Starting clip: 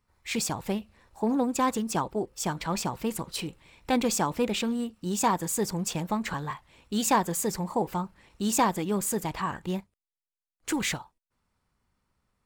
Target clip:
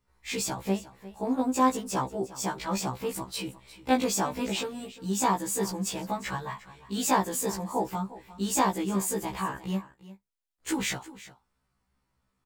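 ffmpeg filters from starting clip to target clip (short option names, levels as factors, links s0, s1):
-filter_complex "[0:a]asplit=2[s0][s1];[s1]aecho=0:1:354:0.141[s2];[s0][s2]amix=inputs=2:normalize=0,afftfilt=real='re*1.73*eq(mod(b,3),0)':imag='im*1.73*eq(mod(b,3),0)':win_size=2048:overlap=0.75,volume=1.19"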